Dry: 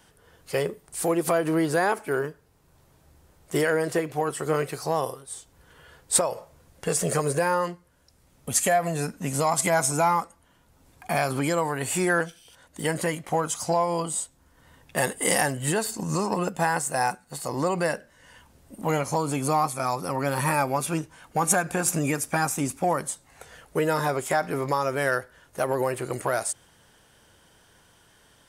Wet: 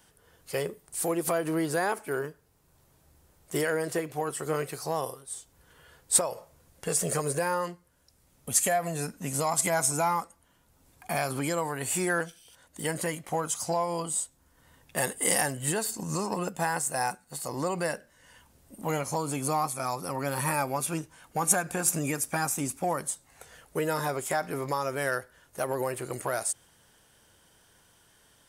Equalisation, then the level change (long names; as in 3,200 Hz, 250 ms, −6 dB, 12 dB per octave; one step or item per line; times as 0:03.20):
high-shelf EQ 6,600 Hz +7 dB
−5.0 dB